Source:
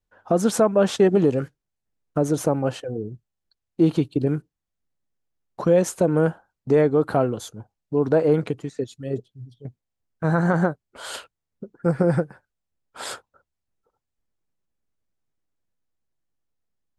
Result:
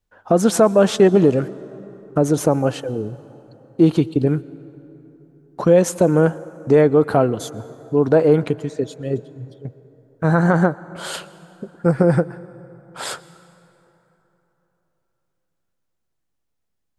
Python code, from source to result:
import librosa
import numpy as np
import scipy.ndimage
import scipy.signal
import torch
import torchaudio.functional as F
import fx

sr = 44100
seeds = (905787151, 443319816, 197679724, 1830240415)

y = fx.rev_plate(x, sr, seeds[0], rt60_s=3.6, hf_ratio=0.5, predelay_ms=105, drr_db=19.0)
y = F.gain(torch.from_numpy(y), 4.5).numpy()